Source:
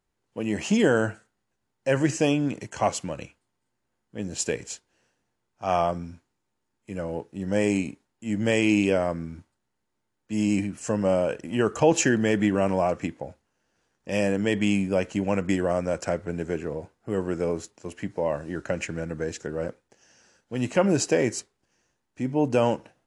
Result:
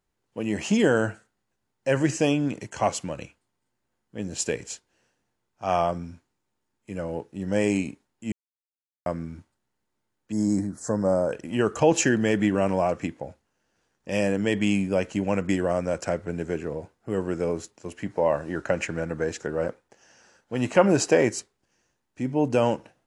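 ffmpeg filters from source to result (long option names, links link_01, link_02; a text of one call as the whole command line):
ffmpeg -i in.wav -filter_complex "[0:a]asettb=1/sr,asplit=3[link_01][link_02][link_03];[link_01]atrim=end=10.324[link_04];[link_02]atrim=start=10.32:end=11.33,asetpts=PTS-STARTPTS,afade=type=in:duration=0.004:curve=qsin,afade=type=out:start_time=1.006:duration=0.004:curve=qsin,asuperstop=centerf=2700:order=4:qfactor=0.96[link_05];[link_03]atrim=start=11.326[link_06];[link_04][link_05]acrossfade=duration=0.004:curve1=hsin:curve2=qsin[link_07];[link_07][link_06]acrossfade=duration=0.004:curve1=qsin:curve2=hsin,asettb=1/sr,asplit=3[link_08][link_09][link_10];[link_08]atrim=end=18.064[link_11];[link_09]atrim=start=18.06:end=21.29,asetpts=PTS-STARTPTS,afade=type=in:duration=0.004:curve=qsin,afade=type=out:start_time=3.226:duration=0.004:curve=qsin,equalizer=frequency=970:width_type=o:width=2.3:gain=5.5[link_12];[link_10]atrim=start=21.286[link_13];[link_11][link_12]acrossfade=duration=0.004:curve1=hsin:curve2=qsin[link_14];[link_14][link_13]acrossfade=duration=0.004:curve1=qsin:curve2=hsin,asplit=3[link_15][link_16][link_17];[link_15]atrim=end=8.32,asetpts=PTS-STARTPTS,afade=type=out:start_time=8.316:duration=0.004:curve=hsin[link_18];[link_16]atrim=start=8.32:end=9.06,asetpts=PTS-STARTPTS,volume=0[link_19];[link_17]atrim=start=9.06,asetpts=PTS-STARTPTS,afade=type=in:duration=0.004:curve=hsin[link_20];[link_18][link_19][link_20]concat=n=3:v=0:a=1" out.wav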